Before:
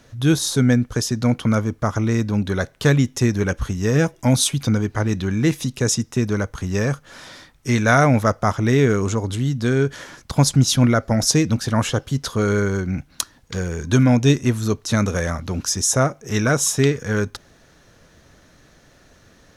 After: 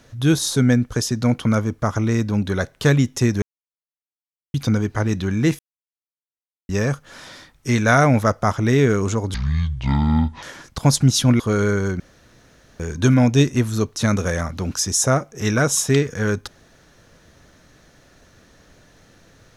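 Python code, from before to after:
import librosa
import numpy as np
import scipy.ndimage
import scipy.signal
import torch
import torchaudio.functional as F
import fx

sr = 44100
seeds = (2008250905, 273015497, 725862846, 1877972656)

y = fx.edit(x, sr, fx.silence(start_s=3.42, length_s=1.12),
    fx.silence(start_s=5.59, length_s=1.1),
    fx.speed_span(start_s=9.34, length_s=0.62, speed=0.57),
    fx.cut(start_s=10.93, length_s=1.36),
    fx.room_tone_fill(start_s=12.89, length_s=0.8), tone=tone)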